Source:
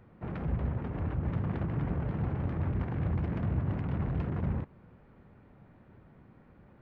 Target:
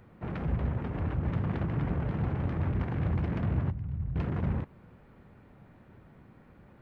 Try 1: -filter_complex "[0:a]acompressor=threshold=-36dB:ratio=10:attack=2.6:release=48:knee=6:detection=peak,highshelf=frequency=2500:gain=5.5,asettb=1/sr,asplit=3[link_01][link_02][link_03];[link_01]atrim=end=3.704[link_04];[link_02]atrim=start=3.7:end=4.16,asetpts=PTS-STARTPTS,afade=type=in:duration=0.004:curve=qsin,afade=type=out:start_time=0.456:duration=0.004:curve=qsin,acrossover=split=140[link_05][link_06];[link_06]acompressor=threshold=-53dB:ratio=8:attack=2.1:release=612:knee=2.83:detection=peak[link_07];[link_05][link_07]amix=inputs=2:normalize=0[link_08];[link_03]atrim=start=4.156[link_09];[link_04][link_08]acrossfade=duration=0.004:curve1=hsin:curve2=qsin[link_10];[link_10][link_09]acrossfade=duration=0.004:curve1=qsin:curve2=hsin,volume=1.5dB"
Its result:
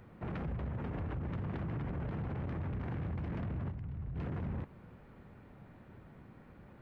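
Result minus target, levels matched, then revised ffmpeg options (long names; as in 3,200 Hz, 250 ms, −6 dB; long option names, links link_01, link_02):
downward compressor: peak gain reduction +13 dB
-filter_complex "[0:a]highshelf=frequency=2500:gain=5.5,asettb=1/sr,asplit=3[link_01][link_02][link_03];[link_01]atrim=end=3.704[link_04];[link_02]atrim=start=3.7:end=4.16,asetpts=PTS-STARTPTS,afade=type=in:duration=0.004:curve=qsin,afade=type=out:start_time=0.456:duration=0.004:curve=qsin,acrossover=split=140[link_05][link_06];[link_06]acompressor=threshold=-53dB:ratio=8:attack=2.1:release=612:knee=2.83:detection=peak[link_07];[link_05][link_07]amix=inputs=2:normalize=0[link_08];[link_03]atrim=start=4.156[link_09];[link_04][link_08]acrossfade=duration=0.004:curve1=hsin:curve2=qsin[link_10];[link_10][link_09]acrossfade=duration=0.004:curve1=qsin:curve2=hsin,volume=1.5dB"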